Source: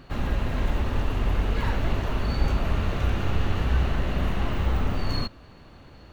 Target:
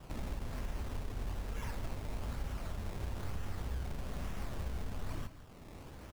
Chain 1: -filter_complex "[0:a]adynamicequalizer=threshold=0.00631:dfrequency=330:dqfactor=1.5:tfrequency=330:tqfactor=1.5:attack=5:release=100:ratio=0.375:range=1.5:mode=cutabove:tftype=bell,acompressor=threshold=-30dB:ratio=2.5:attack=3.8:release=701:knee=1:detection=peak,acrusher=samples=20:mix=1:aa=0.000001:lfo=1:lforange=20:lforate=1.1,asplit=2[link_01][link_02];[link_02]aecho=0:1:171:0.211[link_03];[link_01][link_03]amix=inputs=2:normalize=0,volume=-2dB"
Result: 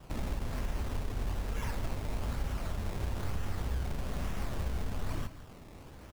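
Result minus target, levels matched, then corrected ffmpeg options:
downward compressor: peak gain reduction −5 dB
-filter_complex "[0:a]adynamicequalizer=threshold=0.00631:dfrequency=330:dqfactor=1.5:tfrequency=330:tqfactor=1.5:attack=5:release=100:ratio=0.375:range=1.5:mode=cutabove:tftype=bell,acompressor=threshold=-38dB:ratio=2.5:attack=3.8:release=701:knee=1:detection=peak,acrusher=samples=20:mix=1:aa=0.000001:lfo=1:lforange=20:lforate=1.1,asplit=2[link_01][link_02];[link_02]aecho=0:1:171:0.211[link_03];[link_01][link_03]amix=inputs=2:normalize=0,volume=-2dB"

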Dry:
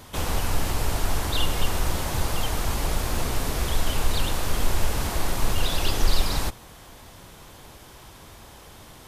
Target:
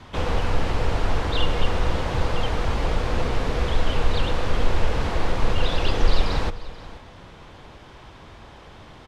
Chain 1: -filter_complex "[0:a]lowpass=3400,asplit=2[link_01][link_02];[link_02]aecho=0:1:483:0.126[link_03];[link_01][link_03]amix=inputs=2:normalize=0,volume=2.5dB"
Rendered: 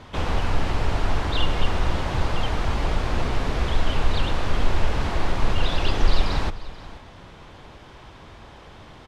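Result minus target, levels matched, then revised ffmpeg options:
500 Hz band −2.5 dB
-filter_complex "[0:a]lowpass=3400,adynamicequalizer=threshold=0.00178:dfrequency=490:dqfactor=7.1:tfrequency=490:tqfactor=7.1:attack=5:release=100:ratio=0.4:range=4:mode=boostabove:tftype=bell,asplit=2[link_01][link_02];[link_02]aecho=0:1:483:0.126[link_03];[link_01][link_03]amix=inputs=2:normalize=0,volume=2.5dB"

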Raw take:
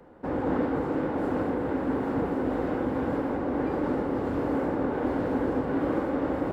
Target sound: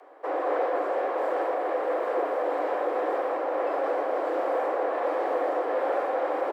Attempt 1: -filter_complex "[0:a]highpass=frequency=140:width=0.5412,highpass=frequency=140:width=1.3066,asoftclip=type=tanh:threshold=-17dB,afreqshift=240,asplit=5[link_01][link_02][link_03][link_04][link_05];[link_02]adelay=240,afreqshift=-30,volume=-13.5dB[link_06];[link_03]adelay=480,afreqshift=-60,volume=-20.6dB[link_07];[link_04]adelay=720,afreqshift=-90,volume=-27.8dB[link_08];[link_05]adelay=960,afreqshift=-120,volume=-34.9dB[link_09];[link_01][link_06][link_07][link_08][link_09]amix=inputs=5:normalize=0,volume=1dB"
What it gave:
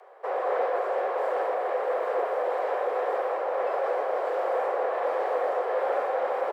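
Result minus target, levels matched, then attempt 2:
125 Hz band −10.0 dB
-filter_complex "[0:a]highpass=frequency=37:width=0.5412,highpass=frequency=37:width=1.3066,asoftclip=type=tanh:threshold=-17dB,afreqshift=240,asplit=5[link_01][link_02][link_03][link_04][link_05];[link_02]adelay=240,afreqshift=-30,volume=-13.5dB[link_06];[link_03]adelay=480,afreqshift=-60,volume=-20.6dB[link_07];[link_04]adelay=720,afreqshift=-90,volume=-27.8dB[link_08];[link_05]adelay=960,afreqshift=-120,volume=-34.9dB[link_09];[link_01][link_06][link_07][link_08][link_09]amix=inputs=5:normalize=0,volume=1dB"

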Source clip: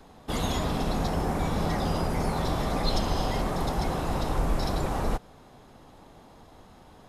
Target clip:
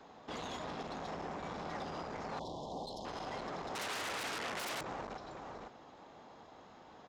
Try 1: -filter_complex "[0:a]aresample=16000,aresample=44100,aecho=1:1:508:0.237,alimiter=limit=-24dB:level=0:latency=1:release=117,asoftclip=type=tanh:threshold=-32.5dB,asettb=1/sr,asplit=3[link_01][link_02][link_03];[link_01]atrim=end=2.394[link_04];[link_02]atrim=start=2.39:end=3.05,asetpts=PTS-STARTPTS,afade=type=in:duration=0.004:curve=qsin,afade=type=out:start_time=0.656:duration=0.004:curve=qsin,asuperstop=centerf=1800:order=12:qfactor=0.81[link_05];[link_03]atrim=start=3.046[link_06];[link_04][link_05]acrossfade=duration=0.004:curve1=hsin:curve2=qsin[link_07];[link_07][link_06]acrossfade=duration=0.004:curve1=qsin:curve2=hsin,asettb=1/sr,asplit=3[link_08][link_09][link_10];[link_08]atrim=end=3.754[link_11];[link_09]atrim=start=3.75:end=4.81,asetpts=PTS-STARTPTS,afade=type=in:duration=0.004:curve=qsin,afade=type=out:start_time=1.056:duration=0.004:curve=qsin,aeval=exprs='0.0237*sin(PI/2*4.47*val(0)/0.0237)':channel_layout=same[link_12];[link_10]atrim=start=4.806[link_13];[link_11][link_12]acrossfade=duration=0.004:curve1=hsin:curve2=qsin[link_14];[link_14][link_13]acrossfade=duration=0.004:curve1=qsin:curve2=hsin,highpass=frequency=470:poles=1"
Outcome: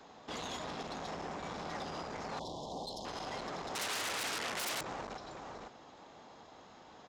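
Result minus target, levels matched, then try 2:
8,000 Hz band +4.5 dB
-filter_complex "[0:a]aresample=16000,aresample=44100,aecho=1:1:508:0.237,alimiter=limit=-24dB:level=0:latency=1:release=117,asoftclip=type=tanh:threshold=-32.5dB,asettb=1/sr,asplit=3[link_01][link_02][link_03];[link_01]atrim=end=2.394[link_04];[link_02]atrim=start=2.39:end=3.05,asetpts=PTS-STARTPTS,afade=type=in:duration=0.004:curve=qsin,afade=type=out:start_time=0.656:duration=0.004:curve=qsin,asuperstop=centerf=1800:order=12:qfactor=0.81[link_05];[link_03]atrim=start=3.046[link_06];[link_04][link_05]acrossfade=duration=0.004:curve1=hsin:curve2=qsin[link_07];[link_07][link_06]acrossfade=duration=0.004:curve1=qsin:curve2=hsin,asettb=1/sr,asplit=3[link_08][link_09][link_10];[link_08]atrim=end=3.754[link_11];[link_09]atrim=start=3.75:end=4.81,asetpts=PTS-STARTPTS,afade=type=in:duration=0.004:curve=qsin,afade=type=out:start_time=1.056:duration=0.004:curve=qsin,aeval=exprs='0.0237*sin(PI/2*4.47*val(0)/0.0237)':channel_layout=same[link_12];[link_10]atrim=start=4.806[link_13];[link_11][link_12]acrossfade=duration=0.004:curve1=hsin:curve2=qsin[link_14];[link_14][link_13]acrossfade=duration=0.004:curve1=qsin:curve2=hsin,highpass=frequency=470:poles=1,highshelf=frequency=3400:gain=-7.5"

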